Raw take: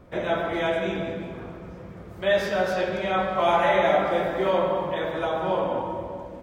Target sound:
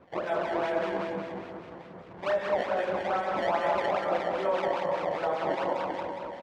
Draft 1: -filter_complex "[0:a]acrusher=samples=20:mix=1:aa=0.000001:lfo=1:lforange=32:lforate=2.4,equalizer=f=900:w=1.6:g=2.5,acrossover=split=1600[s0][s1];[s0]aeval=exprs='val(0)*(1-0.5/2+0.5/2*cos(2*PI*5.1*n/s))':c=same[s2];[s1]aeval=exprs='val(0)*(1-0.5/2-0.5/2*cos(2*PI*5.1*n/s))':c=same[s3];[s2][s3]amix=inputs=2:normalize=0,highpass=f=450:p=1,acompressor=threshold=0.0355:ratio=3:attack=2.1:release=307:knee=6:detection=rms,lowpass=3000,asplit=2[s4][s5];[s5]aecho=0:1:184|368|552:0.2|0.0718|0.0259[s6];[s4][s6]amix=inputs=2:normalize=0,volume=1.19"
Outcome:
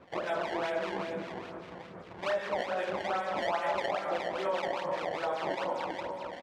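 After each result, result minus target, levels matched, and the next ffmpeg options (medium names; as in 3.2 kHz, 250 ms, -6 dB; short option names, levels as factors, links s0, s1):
echo-to-direct -9 dB; 4 kHz band +4.5 dB; compression: peak gain reduction +4.5 dB
-filter_complex "[0:a]acrusher=samples=20:mix=1:aa=0.000001:lfo=1:lforange=32:lforate=2.4,equalizer=f=900:w=1.6:g=2.5,acrossover=split=1600[s0][s1];[s0]aeval=exprs='val(0)*(1-0.5/2+0.5/2*cos(2*PI*5.1*n/s))':c=same[s2];[s1]aeval=exprs='val(0)*(1-0.5/2-0.5/2*cos(2*PI*5.1*n/s))':c=same[s3];[s2][s3]amix=inputs=2:normalize=0,highpass=f=450:p=1,acompressor=threshold=0.0355:ratio=3:attack=2.1:release=307:knee=6:detection=rms,lowpass=3000,asplit=2[s4][s5];[s5]aecho=0:1:184|368|552|736:0.562|0.202|0.0729|0.0262[s6];[s4][s6]amix=inputs=2:normalize=0,volume=1.19"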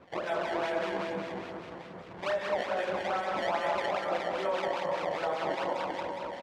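4 kHz band +4.5 dB; compression: peak gain reduction +4.5 dB
-filter_complex "[0:a]acrusher=samples=20:mix=1:aa=0.000001:lfo=1:lforange=32:lforate=2.4,equalizer=f=900:w=1.6:g=2.5,acrossover=split=1600[s0][s1];[s0]aeval=exprs='val(0)*(1-0.5/2+0.5/2*cos(2*PI*5.1*n/s))':c=same[s2];[s1]aeval=exprs='val(0)*(1-0.5/2-0.5/2*cos(2*PI*5.1*n/s))':c=same[s3];[s2][s3]amix=inputs=2:normalize=0,highpass=f=450:p=1,acompressor=threshold=0.0355:ratio=3:attack=2.1:release=307:knee=6:detection=rms,lowpass=3000,highshelf=f=2200:g=-8,asplit=2[s4][s5];[s5]aecho=0:1:184|368|552|736:0.562|0.202|0.0729|0.0262[s6];[s4][s6]amix=inputs=2:normalize=0,volume=1.19"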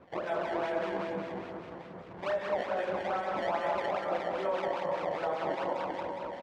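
compression: peak gain reduction +4.5 dB
-filter_complex "[0:a]acrusher=samples=20:mix=1:aa=0.000001:lfo=1:lforange=32:lforate=2.4,equalizer=f=900:w=1.6:g=2.5,acrossover=split=1600[s0][s1];[s0]aeval=exprs='val(0)*(1-0.5/2+0.5/2*cos(2*PI*5.1*n/s))':c=same[s2];[s1]aeval=exprs='val(0)*(1-0.5/2-0.5/2*cos(2*PI*5.1*n/s))':c=same[s3];[s2][s3]amix=inputs=2:normalize=0,highpass=f=450:p=1,acompressor=threshold=0.075:ratio=3:attack=2.1:release=307:knee=6:detection=rms,lowpass=3000,highshelf=f=2200:g=-8,asplit=2[s4][s5];[s5]aecho=0:1:184|368|552|736:0.562|0.202|0.0729|0.0262[s6];[s4][s6]amix=inputs=2:normalize=0,volume=1.19"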